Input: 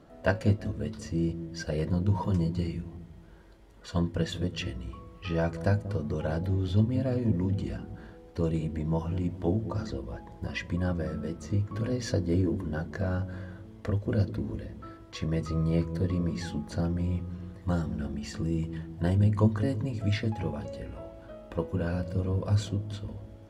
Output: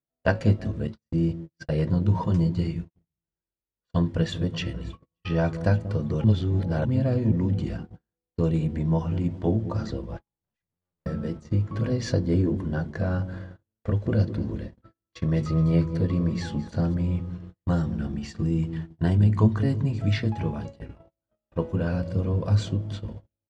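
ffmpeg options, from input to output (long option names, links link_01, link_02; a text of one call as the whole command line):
ffmpeg -i in.wav -filter_complex "[0:a]asettb=1/sr,asplit=3[link_01][link_02][link_03];[link_01]atrim=end=0.874[link_04];[link_02]atrim=start=0.87:end=2.95,asetpts=PTS-STARTPTS,afade=type=in:duration=0.004:curve=qsin,afade=type=out:start_time=2.076:duration=0.004:curve=qsin,agate=range=-33dB:threshold=-34dB:ratio=3:release=100:detection=peak[link_05];[link_03]atrim=start=2.946[link_06];[link_04][link_05]acrossfade=duration=0.004:curve1=hsin:curve2=qsin[link_07];[link_07][link_06]acrossfade=duration=0.004:curve1=qsin:curve2=hsin,asplit=2[link_08][link_09];[link_09]afade=type=in:start_time=3.95:duration=0.01,afade=type=out:start_time=5.05:duration=0.01,aecho=0:1:580|1160|1740:0.133352|0.0533409|0.0213363[link_10];[link_08][link_10]amix=inputs=2:normalize=0,asettb=1/sr,asplit=3[link_11][link_12][link_13];[link_11]atrim=end=10.174[link_14];[link_12]atrim=start=10.17:end=11.06,asetpts=PTS-STARTPTS,afade=type=in:duration=0.004:curve=qsin,afade=type=out:start_time=0.886:duration=0.004:curve=qsin,aeval=exprs='(tanh(224*val(0)+0.65)-tanh(0.65))/224':channel_layout=same[link_15];[link_13]atrim=start=11.056[link_16];[link_14][link_15]acrossfade=duration=0.004:curve1=hsin:curve2=qsin[link_17];[link_17][link_16]acrossfade=duration=0.004:curve1=qsin:curve2=hsin,asplit=3[link_18][link_19][link_20];[link_18]afade=type=out:start_time=13.44:duration=0.02[link_21];[link_19]aecho=1:1:216|432|648|864:0.158|0.0697|0.0307|0.0135,afade=type=in:start_time=13.44:duration=0.02,afade=type=out:start_time=16.93:duration=0.02[link_22];[link_20]afade=type=in:start_time=16.93:duration=0.02[link_23];[link_21][link_22][link_23]amix=inputs=3:normalize=0,asettb=1/sr,asplit=3[link_24][link_25][link_26];[link_24]atrim=end=17.954[link_27];[link_25]atrim=start=17.95:end=21.03,asetpts=PTS-STARTPTS,afade=type=in:duration=0.004:curve=qsin,afade=type=out:start_time=3.076:duration=0.004:curve=qsin,bandreject=frequency=530:width=8.5[link_28];[link_26]atrim=start=21.026[link_29];[link_27][link_28]acrossfade=duration=0.004:curve1=hsin:curve2=qsin[link_30];[link_30][link_29]acrossfade=duration=0.004:curve1=qsin:curve2=hsin,asplit=3[link_31][link_32][link_33];[link_31]atrim=end=6.242[link_34];[link_32]atrim=start=6.238:end=6.852,asetpts=PTS-STARTPTS,areverse[link_35];[link_33]atrim=start=6.848[link_36];[link_34][link_35]acrossfade=duration=0.004:curve1=hsin:curve2=hsin[link_37];[link_37][link_36]acrossfade=duration=0.004:curve1=hsin:curve2=hsin,lowpass=7000,agate=range=-45dB:threshold=-38dB:ratio=16:detection=peak,equalizer=frequency=140:width=3.4:gain=6.5,volume=3dB" out.wav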